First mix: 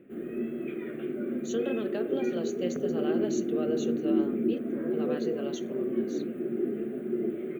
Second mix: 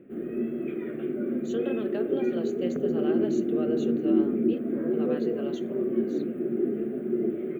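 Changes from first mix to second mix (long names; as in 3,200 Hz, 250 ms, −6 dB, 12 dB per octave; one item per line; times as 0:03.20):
speech: remove low-pass with resonance 6,100 Hz, resonance Q 3.5
background: add tilt shelving filter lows +3.5 dB, about 1,500 Hz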